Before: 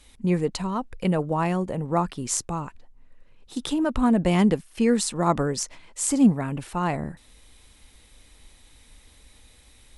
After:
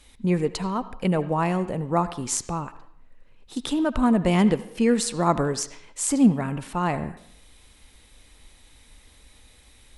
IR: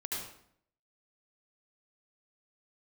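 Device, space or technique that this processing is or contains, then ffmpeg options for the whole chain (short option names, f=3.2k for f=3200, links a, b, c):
filtered reverb send: -filter_complex "[0:a]asplit=2[a][b];[b]highpass=f=480:p=1,lowpass=4.4k[c];[1:a]atrim=start_sample=2205[d];[c][d]afir=irnorm=-1:irlink=0,volume=-13dB[e];[a][e]amix=inputs=2:normalize=0"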